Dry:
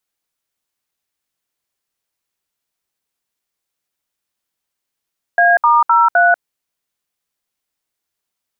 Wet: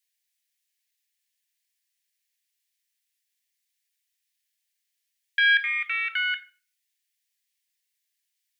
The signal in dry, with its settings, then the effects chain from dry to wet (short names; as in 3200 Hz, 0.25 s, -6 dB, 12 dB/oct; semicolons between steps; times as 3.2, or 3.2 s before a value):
DTMF "A*03", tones 0.191 s, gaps 66 ms, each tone -10.5 dBFS
self-modulated delay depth 0.053 ms; steep high-pass 1700 Hz 72 dB/oct; shoebox room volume 370 m³, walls furnished, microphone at 0.78 m